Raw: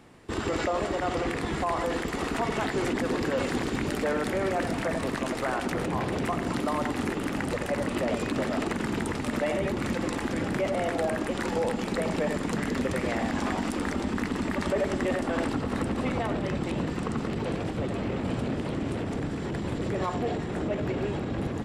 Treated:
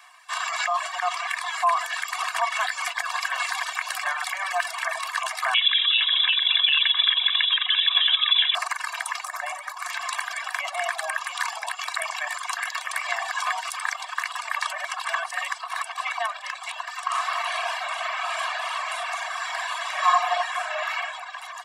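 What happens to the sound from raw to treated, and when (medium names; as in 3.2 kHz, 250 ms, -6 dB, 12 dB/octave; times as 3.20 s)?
2.69–3.35 s: echo throw 360 ms, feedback 75%, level -8.5 dB
5.54–8.55 s: frequency inversion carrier 3.7 kHz
9.24–9.90 s: peaking EQ 3 kHz -9.5 dB 1.2 oct
14.95–15.58 s: reverse
17.05–20.96 s: reverb throw, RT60 1.8 s, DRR -6.5 dB
whole clip: reverb removal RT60 0.97 s; steep high-pass 720 Hz 96 dB/octave; comb 1.8 ms, depth 88%; trim +7 dB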